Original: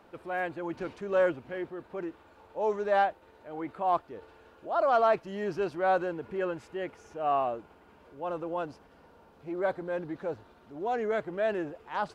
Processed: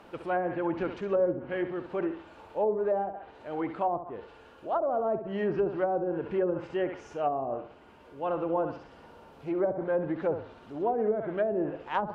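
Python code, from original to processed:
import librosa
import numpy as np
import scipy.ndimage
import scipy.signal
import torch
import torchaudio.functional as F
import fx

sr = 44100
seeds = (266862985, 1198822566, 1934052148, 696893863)

p1 = fx.peak_eq(x, sr, hz=2900.0, db=4.0, octaves=0.28)
p2 = fx.room_flutter(p1, sr, wall_m=11.4, rt60_s=0.42)
p3 = fx.rider(p2, sr, range_db=3, speed_s=0.5)
p4 = p2 + F.gain(torch.from_numpy(p3), 2.0).numpy()
p5 = fx.env_lowpass_down(p4, sr, base_hz=480.0, full_db=-17.5)
y = F.gain(torch.from_numpy(p5), -3.5).numpy()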